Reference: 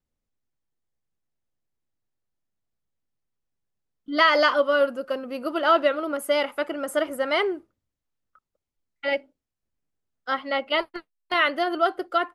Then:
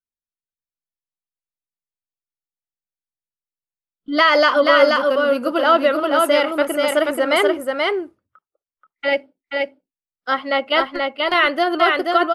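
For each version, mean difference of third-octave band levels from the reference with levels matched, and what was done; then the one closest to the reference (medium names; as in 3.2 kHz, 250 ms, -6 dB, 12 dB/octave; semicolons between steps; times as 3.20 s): 3.5 dB: spectral noise reduction 28 dB; in parallel at +2.5 dB: peak limiter -14 dBFS, peak gain reduction 7 dB; on the sum: delay 481 ms -3 dB; trim -1 dB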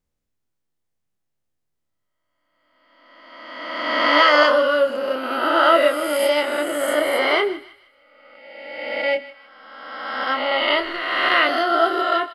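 6.0 dB: reverse spectral sustain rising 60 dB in 1.72 s; doubling 27 ms -7 dB; on a send: thinning echo 156 ms, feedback 41%, high-pass 1 kHz, level -16 dB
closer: first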